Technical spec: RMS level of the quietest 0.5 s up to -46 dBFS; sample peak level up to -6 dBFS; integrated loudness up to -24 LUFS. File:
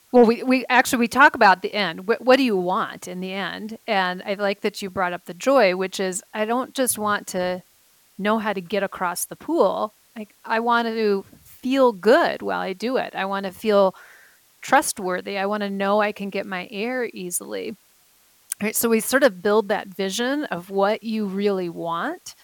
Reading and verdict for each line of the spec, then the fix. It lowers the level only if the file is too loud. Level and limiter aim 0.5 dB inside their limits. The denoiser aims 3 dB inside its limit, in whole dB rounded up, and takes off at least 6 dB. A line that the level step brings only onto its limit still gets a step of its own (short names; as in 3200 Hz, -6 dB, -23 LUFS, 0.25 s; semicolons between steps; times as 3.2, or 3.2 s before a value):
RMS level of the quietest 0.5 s -58 dBFS: OK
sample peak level -4.5 dBFS: fail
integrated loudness -21.5 LUFS: fail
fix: gain -3 dB